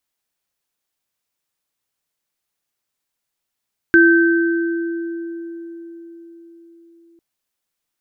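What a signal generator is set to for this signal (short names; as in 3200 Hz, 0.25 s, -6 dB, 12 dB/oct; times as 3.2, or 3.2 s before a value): sine partials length 3.25 s, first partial 336 Hz, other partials 1550 Hz, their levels 0.5 dB, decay 4.87 s, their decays 2.21 s, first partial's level -9 dB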